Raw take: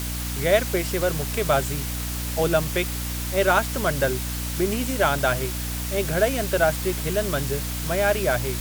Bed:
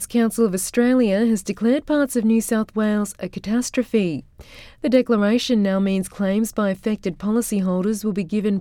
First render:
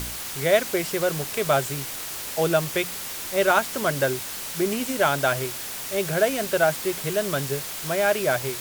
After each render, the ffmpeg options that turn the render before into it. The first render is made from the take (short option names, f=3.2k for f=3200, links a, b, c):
-af "bandreject=f=60:t=h:w=4,bandreject=f=120:t=h:w=4,bandreject=f=180:t=h:w=4,bandreject=f=240:t=h:w=4,bandreject=f=300:t=h:w=4"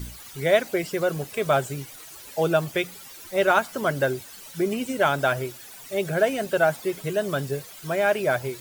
-af "afftdn=nr=14:nf=-34"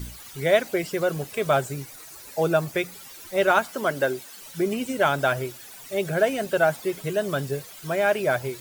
-filter_complex "[0:a]asettb=1/sr,asplit=3[a][b][c];[a]atrim=end=1.614[d];[b]atrim=start=1.61:end=2.94,asetpts=PTS-STARTPTS,afade=t=in:d=0.004:c=qsin,afade=t=out:st=1.326:d=0.004:c=qsin,equalizer=f=3.1k:w=4.3:g=-6.5[e];[c]atrim=start=2.936[f];[d][e]acrossfade=d=0.004:c1=hsin:c2=qsin[g];[g][f]acrossfade=d=0.004:c1=qsin:c2=hsin,asettb=1/sr,asplit=3[h][i][j];[h]atrim=end=3.714[k];[i]atrim=start=3.71:end=4.41,asetpts=PTS-STARTPTS,afade=t=in:d=0.004:c=qsin,afade=t=out:st=0.696:d=0.004:c=qsin,highpass=200[l];[j]atrim=start=4.406[m];[k][l]acrossfade=d=0.004:c1=hsin:c2=qsin[n];[n][m]acrossfade=d=0.004:c1=qsin:c2=hsin"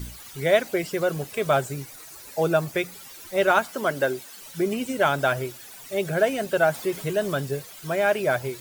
-filter_complex "[0:a]asettb=1/sr,asplit=3[a][b][c];[a]atrim=end=6.744[d];[b]atrim=start=6.74:end=7.33,asetpts=PTS-STARTPTS,afade=t=in:d=0.004:c=qsin,afade=t=out:st=0.586:d=0.004:c=qsin,aeval=exprs='val(0)+0.5*0.0106*sgn(val(0))':c=same[e];[c]atrim=start=7.326[f];[d][e]acrossfade=d=0.004:c1=hsin:c2=qsin[g];[g][f]acrossfade=d=0.004:c1=qsin:c2=hsin"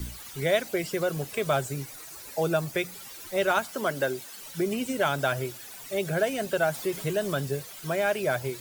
-filter_complex "[0:a]acrossover=split=140|3000[a][b][c];[b]acompressor=threshold=-30dB:ratio=1.5[d];[a][d][c]amix=inputs=3:normalize=0"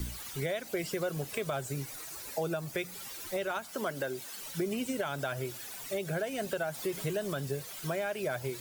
-af "alimiter=limit=-18.5dB:level=0:latency=1:release=275,acompressor=threshold=-33dB:ratio=2"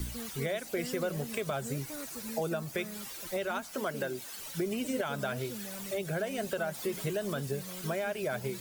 -filter_complex "[1:a]volume=-25.5dB[a];[0:a][a]amix=inputs=2:normalize=0"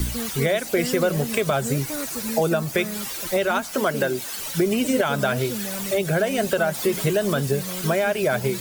-af "volume=12dB"